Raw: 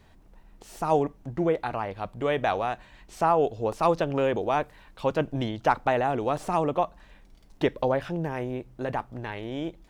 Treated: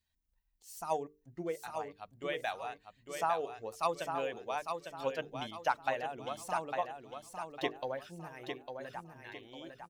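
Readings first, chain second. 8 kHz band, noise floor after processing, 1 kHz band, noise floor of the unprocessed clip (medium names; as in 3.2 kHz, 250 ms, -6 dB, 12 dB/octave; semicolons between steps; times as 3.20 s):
no reading, -77 dBFS, -9.0 dB, -55 dBFS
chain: expander on every frequency bin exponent 1.5; transient shaper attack +4 dB, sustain 0 dB; tilt EQ +3 dB/octave; hum notches 50/100/150/200/250/300/350/400/450 Hz; feedback delay 853 ms, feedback 35%, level -6 dB; trim -9 dB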